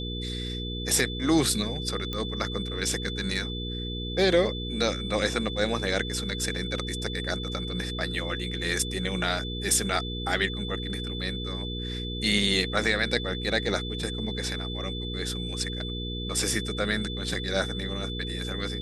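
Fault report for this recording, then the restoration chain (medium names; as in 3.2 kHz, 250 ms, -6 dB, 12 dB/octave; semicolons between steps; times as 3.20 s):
hum 60 Hz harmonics 8 -34 dBFS
whine 3.5 kHz -36 dBFS
2.13 s: pop -17 dBFS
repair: de-click; band-stop 3.5 kHz, Q 30; de-hum 60 Hz, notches 8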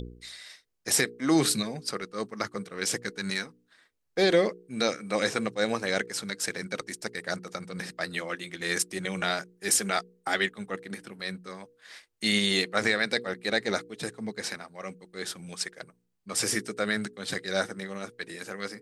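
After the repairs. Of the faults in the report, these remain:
2.13 s: pop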